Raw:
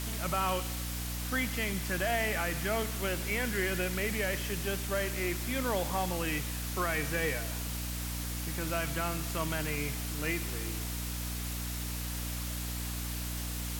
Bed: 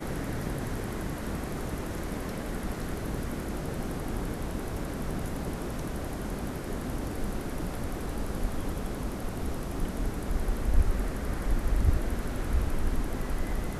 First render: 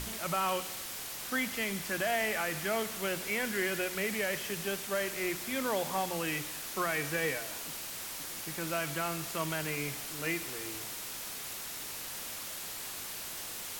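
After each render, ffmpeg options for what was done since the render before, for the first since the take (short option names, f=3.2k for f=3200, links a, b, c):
-af "bandreject=f=60:t=h:w=6,bandreject=f=120:t=h:w=6,bandreject=f=180:t=h:w=6,bandreject=f=240:t=h:w=6,bandreject=f=300:t=h:w=6"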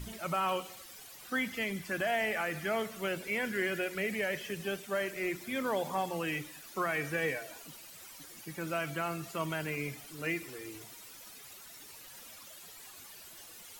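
-af "afftdn=nr=13:nf=-41"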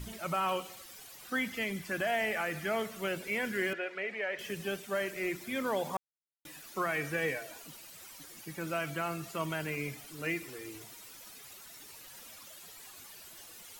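-filter_complex "[0:a]asettb=1/sr,asplit=3[a][b][c];[a]atrim=end=3.734[d];[b]atrim=start=3.73:end=4.39,asetpts=PTS-STARTPTS,afade=t=in:d=0.004:c=qsin,afade=t=out:st=0.656:d=0.004:c=qsin,highpass=450,lowpass=2.7k[e];[c]atrim=start=4.386[f];[d][e]acrossfade=d=0.004:c1=hsin:c2=qsin[g];[g][f]acrossfade=d=0.004:c1=qsin:c2=hsin,asplit=3[h][i][j];[h]atrim=end=5.97,asetpts=PTS-STARTPTS,afade=t=out:st=5.966:d=0.004:c=hsin[k];[i]atrim=start=5.97:end=6.45,asetpts=PTS-STARTPTS,volume=0[l];[j]atrim=start=6.45,asetpts=PTS-STARTPTS,afade=t=in:d=0.004:c=hsin[m];[k][l][m]concat=n=3:v=0:a=1"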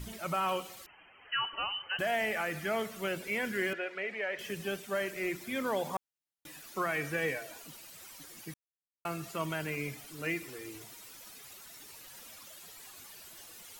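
-filter_complex "[0:a]asettb=1/sr,asplit=3[a][b][c];[a]atrim=end=0.864[d];[b]atrim=start=0.86:end=1.99,asetpts=PTS-STARTPTS,afade=t=in:d=0.004:c=qsin,afade=t=out:st=1.126:d=0.004:c=qsin,lowpass=f=2.7k:t=q:w=0.5098,lowpass=f=2.7k:t=q:w=0.6013,lowpass=f=2.7k:t=q:w=0.9,lowpass=f=2.7k:t=q:w=2.563,afreqshift=-3200[e];[c]atrim=start=1.986[f];[d][e]acrossfade=d=0.004:c1=hsin:c2=qsin[g];[g][f]acrossfade=d=0.004:c1=qsin:c2=hsin,asplit=3[h][i][j];[h]atrim=end=8.54,asetpts=PTS-STARTPTS,afade=t=out:st=8.536:d=0.004:c=hsin[k];[i]atrim=start=8.54:end=9.05,asetpts=PTS-STARTPTS,volume=0[l];[j]atrim=start=9.05,asetpts=PTS-STARTPTS,afade=t=in:d=0.004:c=hsin[m];[k][l][m]concat=n=3:v=0:a=1"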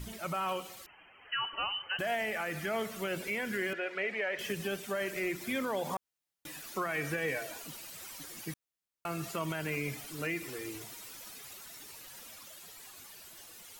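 -af "dynaudnorm=f=600:g=9:m=4dB,alimiter=level_in=0.5dB:limit=-24dB:level=0:latency=1:release=126,volume=-0.5dB"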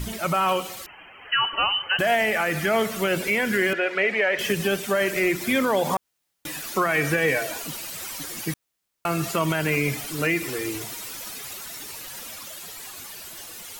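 -af "volume=12dB"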